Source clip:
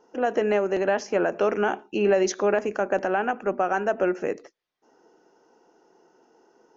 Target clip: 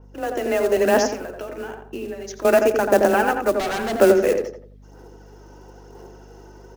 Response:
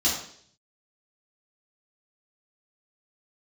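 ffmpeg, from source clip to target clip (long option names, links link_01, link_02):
-filter_complex "[0:a]aphaser=in_gain=1:out_gain=1:delay=3.4:decay=0.44:speed=1:type=sinusoidal,afreqshift=19,asettb=1/sr,asplit=3[link_01][link_02][link_03];[link_01]atrim=end=1.084[link_04];[link_02]atrim=start=1.08:end=2.45,asetpts=PTS-STARTPTS,afade=type=in:duration=0.004:curve=qsin,afade=type=out:start_time=1.366:duration=0.004:curve=qsin,acompressor=threshold=-39dB:ratio=6[link_05];[link_03]atrim=start=2.446[link_06];[link_04][link_05]acrossfade=duration=0.004:curve1=hsin:curve2=qsin[link_07];[link_07][link_06]acrossfade=duration=0.004:curve1=qsin:curve2=hsin,asettb=1/sr,asplit=3[link_08][link_09][link_10];[link_08]atrim=end=3.544[link_11];[link_09]atrim=start=3.54:end=3.96,asetpts=PTS-STARTPTS,afade=type=in:duration=0.004:curve=qsin,afade=type=out:start_time=0.416:duration=0.004:curve=qsin,asoftclip=type=hard:threshold=-28.5dB[link_12];[link_10]atrim=start=3.956[link_13];[link_11][link_12]acrossfade=duration=0.004:curve1=hsin:curve2=qsin[link_14];[link_14][link_13]acrossfade=duration=0.004:curve1=qsin:curve2=hsin,equalizer=frequency=860:width=0.49:gain=-3.5,acrusher=bits=5:mode=log:mix=0:aa=0.000001,asplit=2[link_15][link_16];[link_16]adelay=86,lowpass=frequency=1400:poles=1,volume=-3.5dB,asplit=2[link_17][link_18];[link_18]adelay=86,lowpass=frequency=1400:poles=1,volume=0.37,asplit=2[link_19][link_20];[link_20]adelay=86,lowpass=frequency=1400:poles=1,volume=0.37,asplit=2[link_21][link_22];[link_22]adelay=86,lowpass=frequency=1400:poles=1,volume=0.37,asplit=2[link_23][link_24];[link_24]adelay=86,lowpass=frequency=1400:poles=1,volume=0.37[link_25];[link_15][link_17][link_19][link_21][link_23][link_25]amix=inputs=6:normalize=0,dynaudnorm=framelen=340:gausssize=5:maxgain=14dB,aeval=exprs='val(0)+0.00631*(sin(2*PI*50*n/s)+sin(2*PI*2*50*n/s)/2+sin(2*PI*3*50*n/s)/3+sin(2*PI*4*50*n/s)/4+sin(2*PI*5*50*n/s)/5)':channel_layout=same,adynamicequalizer=threshold=0.0141:dfrequency=4000:dqfactor=0.7:tfrequency=4000:tqfactor=0.7:attack=5:release=100:ratio=0.375:range=2:mode=boostabove:tftype=highshelf,volume=-1dB"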